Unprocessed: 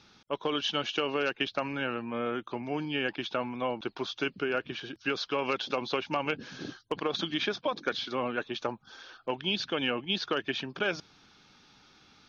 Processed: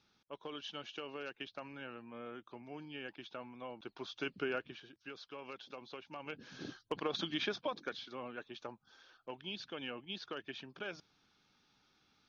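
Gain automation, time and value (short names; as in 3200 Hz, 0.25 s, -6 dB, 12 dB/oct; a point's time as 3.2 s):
3.69 s -15 dB
4.47 s -5.5 dB
4.94 s -18 dB
6.12 s -18 dB
6.63 s -6 dB
7.59 s -6 dB
8.07 s -13.5 dB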